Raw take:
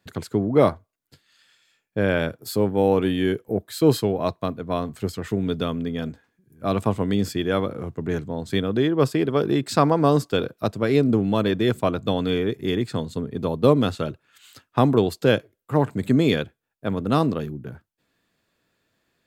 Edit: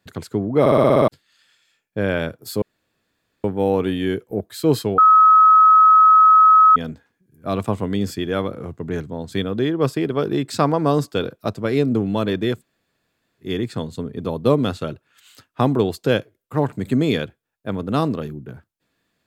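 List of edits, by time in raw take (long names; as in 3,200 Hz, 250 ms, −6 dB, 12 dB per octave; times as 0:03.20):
0:00.60: stutter in place 0.06 s, 8 plays
0:02.62: splice in room tone 0.82 s
0:04.16–0:05.94: beep over 1,280 Hz −7.5 dBFS
0:11.74–0:12.63: fill with room tone, crossfade 0.16 s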